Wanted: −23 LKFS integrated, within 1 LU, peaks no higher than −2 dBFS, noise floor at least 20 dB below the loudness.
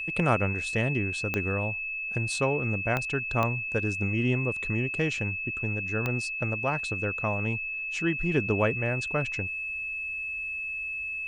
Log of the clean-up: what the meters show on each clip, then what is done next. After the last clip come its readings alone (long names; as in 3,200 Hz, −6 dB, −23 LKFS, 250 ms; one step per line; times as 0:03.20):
number of clicks 4; interfering tone 2,600 Hz; level of the tone −31 dBFS; integrated loudness −28.0 LKFS; sample peak −10.0 dBFS; target loudness −23.0 LKFS
→ click removal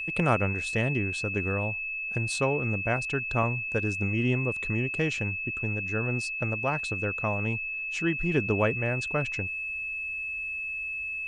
number of clicks 0; interfering tone 2,600 Hz; level of the tone −31 dBFS
→ notch filter 2,600 Hz, Q 30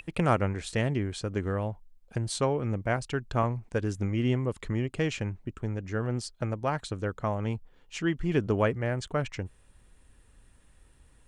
interfering tone none found; integrated loudness −30.5 LKFS; sample peak −10.0 dBFS; target loudness −23.0 LKFS
→ level +7.5 dB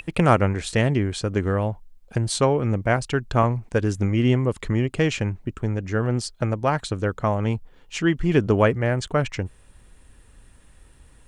integrated loudness −23.0 LKFS; sample peak −2.5 dBFS; background noise floor −53 dBFS